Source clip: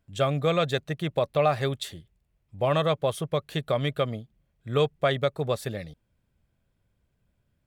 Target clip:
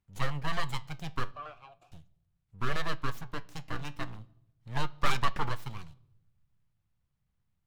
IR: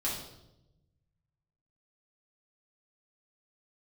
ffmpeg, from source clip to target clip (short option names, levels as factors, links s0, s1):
-filter_complex "[0:a]equalizer=f=890:t=o:w=0.77:g=6,asplit=3[s0][s1][s2];[s0]afade=t=out:st=3.21:d=0.02[s3];[s1]tremolo=f=300:d=0.75,afade=t=in:st=3.21:d=0.02,afade=t=out:st=4.19:d=0.02[s4];[s2]afade=t=in:st=4.19:d=0.02[s5];[s3][s4][s5]amix=inputs=3:normalize=0,asettb=1/sr,asplit=3[s6][s7][s8];[s6]atrim=end=4.984[s9];[s7]atrim=start=4.98:end=5.49,asetpts=PTS-STARTPTS,afade=t=in:d=0.004:c=qsin,afade=t=out:st=0.506:d=0.004:c=qsin,asplit=2[s10][s11];[s11]highpass=f=720:p=1,volume=15.8,asoftclip=type=tanh:threshold=0.335[s12];[s10][s12]amix=inputs=2:normalize=0,lowpass=f=2700:p=1,volume=0.501[s13];[s8]atrim=start=5.486[s14];[s9][s13]acrossfade=d=0.004:c1=hsin:c2=qsin[s15];[s15][s14]acrossfade=d=0.004:c1=qsin:c2=hsin,acrossover=split=250[s16][s17];[s17]aeval=exprs='abs(val(0))':c=same[s18];[s16][s18]amix=inputs=2:normalize=0,flanger=delay=5.1:depth=5.3:regen=79:speed=0.39:shape=sinusoidal,asettb=1/sr,asplit=3[s19][s20][s21];[s19]atrim=end=1.314[s22];[s20]atrim=start=1.31:end=1.92,asetpts=PTS-STARTPTS,afade=t=in:d=0.004:c=qsin,afade=t=out:st=0.606:d=0.004:c=qsin,asplit=3[s23][s24][s25];[s23]bandpass=f=730:t=q:w=8,volume=1[s26];[s24]bandpass=f=1090:t=q:w=8,volume=0.501[s27];[s25]bandpass=f=2440:t=q:w=8,volume=0.355[s28];[s26][s27][s28]amix=inputs=3:normalize=0[s29];[s21]atrim=start=1.916[s30];[s22][s29]acrossfade=d=0.004:c1=hsin:c2=qsin[s31];[s31][s30]acrossfade=d=0.004:c1=qsin:c2=hsin,asplit=2[s32][s33];[1:a]atrim=start_sample=2205,lowpass=5300[s34];[s33][s34]afir=irnorm=-1:irlink=0,volume=0.0631[s35];[s32][s35]amix=inputs=2:normalize=0,volume=0.708"